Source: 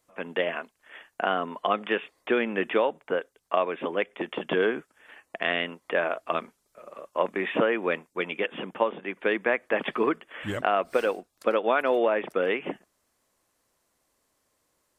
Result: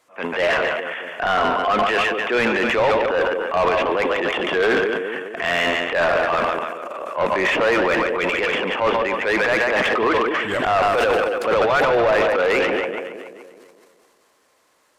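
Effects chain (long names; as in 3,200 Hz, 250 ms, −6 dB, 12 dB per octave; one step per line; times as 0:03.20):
echo with a time of its own for lows and highs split 510 Hz, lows 211 ms, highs 142 ms, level −10 dB
transient designer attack −9 dB, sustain +10 dB
mid-hump overdrive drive 22 dB, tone 2,700 Hz, clips at −9 dBFS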